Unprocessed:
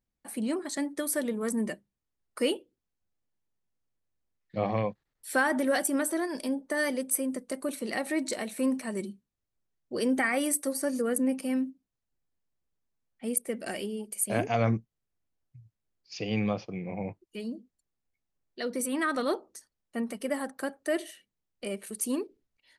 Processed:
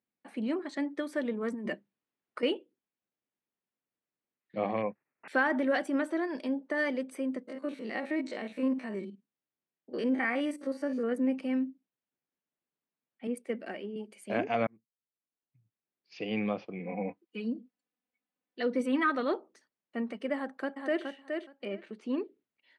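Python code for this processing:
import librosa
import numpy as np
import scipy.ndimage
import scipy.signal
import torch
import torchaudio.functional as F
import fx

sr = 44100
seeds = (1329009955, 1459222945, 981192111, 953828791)

y = fx.over_compress(x, sr, threshold_db=-34.0, ratio=-1.0, at=(1.54, 2.43))
y = fx.resample_bad(y, sr, factor=8, down='none', up='filtered', at=(4.82, 5.28))
y = fx.spec_steps(y, sr, hold_ms=50, at=(7.43, 11.12))
y = fx.band_widen(y, sr, depth_pct=100, at=(13.27, 13.96))
y = fx.comb(y, sr, ms=4.0, depth=0.81, at=(16.79, 19.1))
y = fx.echo_throw(y, sr, start_s=20.34, length_s=0.7, ms=420, feedback_pct=15, wet_db=-5.0)
y = fx.air_absorb(y, sr, metres=130.0, at=(21.65, 22.18))
y = fx.edit(y, sr, fx.fade_in_span(start_s=14.67, length_s=1.58), tone=tone)
y = scipy.signal.sosfilt(scipy.signal.cheby1(2, 1.0, [230.0, 2800.0], 'bandpass', fs=sr, output='sos'), y)
y = y * 10.0 ** (-1.0 / 20.0)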